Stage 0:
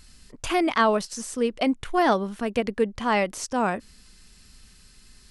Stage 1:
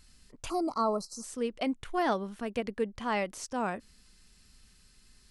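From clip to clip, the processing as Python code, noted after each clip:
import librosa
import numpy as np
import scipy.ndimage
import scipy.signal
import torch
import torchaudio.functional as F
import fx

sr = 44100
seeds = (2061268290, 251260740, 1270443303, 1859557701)

y = fx.spec_box(x, sr, start_s=0.49, length_s=0.75, low_hz=1400.0, high_hz=3900.0, gain_db=-29)
y = y * librosa.db_to_amplitude(-8.0)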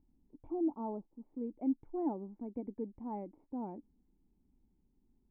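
y = fx.formant_cascade(x, sr, vowel='u')
y = y * librosa.db_to_amplitude(3.0)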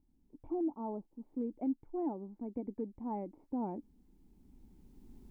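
y = fx.recorder_agc(x, sr, target_db=-27.0, rise_db_per_s=9.0, max_gain_db=30)
y = y * librosa.db_to_amplitude(-2.0)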